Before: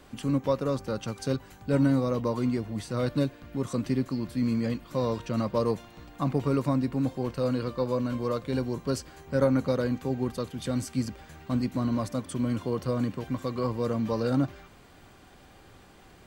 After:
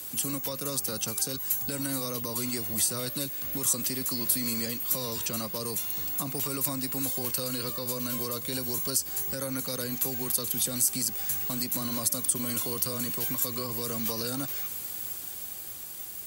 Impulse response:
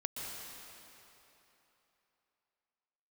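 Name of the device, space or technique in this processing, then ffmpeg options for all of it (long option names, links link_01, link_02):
FM broadcast chain: -filter_complex "[0:a]highpass=58,dynaudnorm=framelen=220:gausssize=11:maxgain=3dB,acrossover=split=260|520|1100[link_01][link_02][link_03][link_04];[link_01]acompressor=threshold=-38dB:ratio=4[link_05];[link_02]acompressor=threshold=-37dB:ratio=4[link_06];[link_03]acompressor=threshold=-43dB:ratio=4[link_07];[link_04]acompressor=threshold=-43dB:ratio=4[link_08];[link_05][link_06][link_07][link_08]amix=inputs=4:normalize=0,aemphasis=mode=production:type=75fm,alimiter=level_in=1dB:limit=-24dB:level=0:latency=1:release=54,volume=-1dB,asoftclip=type=hard:threshold=-26.5dB,lowpass=frequency=15000:width=0.5412,lowpass=frequency=15000:width=1.3066,aemphasis=mode=production:type=75fm"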